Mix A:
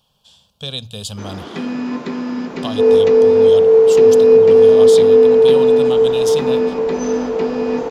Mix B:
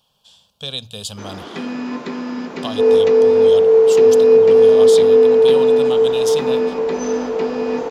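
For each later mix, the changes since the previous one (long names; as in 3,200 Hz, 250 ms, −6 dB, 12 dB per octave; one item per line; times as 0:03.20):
master: add low-shelf EQ 220 Hz −7 dB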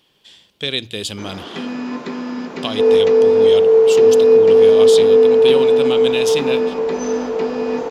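speech: remove phaser with its sweep stopped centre 830 Hz, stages 4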